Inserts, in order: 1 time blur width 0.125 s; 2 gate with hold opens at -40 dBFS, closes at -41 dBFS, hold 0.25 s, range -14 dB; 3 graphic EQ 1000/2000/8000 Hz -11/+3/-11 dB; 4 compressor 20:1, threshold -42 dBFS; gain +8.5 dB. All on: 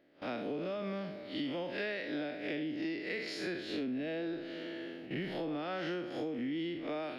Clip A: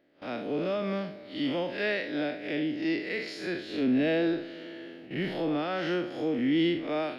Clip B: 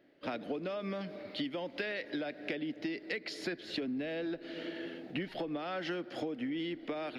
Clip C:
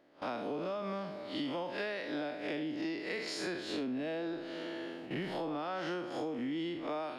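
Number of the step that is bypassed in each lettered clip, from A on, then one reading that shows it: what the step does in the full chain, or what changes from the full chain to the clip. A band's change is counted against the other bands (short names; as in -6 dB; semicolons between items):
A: 4, mean gain reduction 5.5 dB; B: 1, 4 kHz band +1.5 dB; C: 3, 1 kHz band +5.0 dB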